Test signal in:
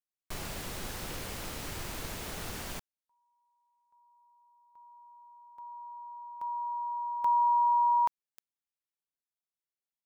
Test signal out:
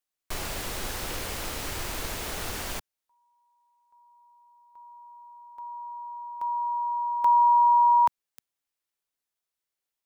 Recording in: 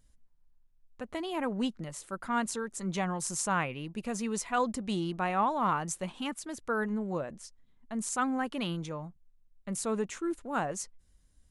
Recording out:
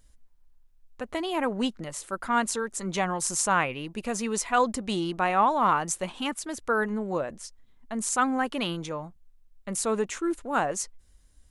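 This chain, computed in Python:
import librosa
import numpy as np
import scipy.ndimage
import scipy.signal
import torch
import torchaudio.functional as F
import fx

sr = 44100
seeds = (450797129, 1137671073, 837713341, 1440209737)

y = fx.peak_eq(x, sr, hz=160.0, db=-6.5, octaves=1.3)
y = F.gain(torch.from_numpy(y), 6.5).numpy()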